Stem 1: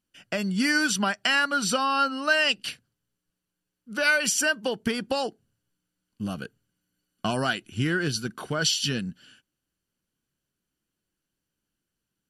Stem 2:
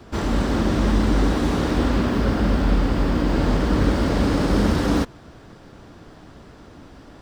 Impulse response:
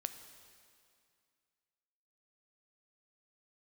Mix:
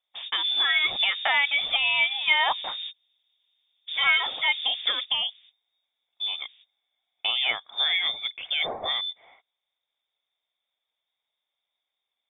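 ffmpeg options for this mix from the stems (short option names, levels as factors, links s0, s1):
-filter_complex "[0:a]volume=1.06,asplit=2[s0][s1];[1:a]lowpass=1600,alimiter=limit=0.158:level=0:latency=1:release=65,volume=0.237[s2];[s1]apad=whole_len=318228[s3];[s2][s3]sidechaingate=range=0.0141:threshold=0.00178:ratio=16:detection=peak[s4];[s0][s4]amix=inputs=2:normalize=0,lowpass=f=3100:t=q:w=0.5098,lowpass=f=3100:t=q:w=0.6013,lowpass=f=3100:t=q:w=0.9,lowpass=f=3100:t=q:w=2.563,afreqshift=-3700"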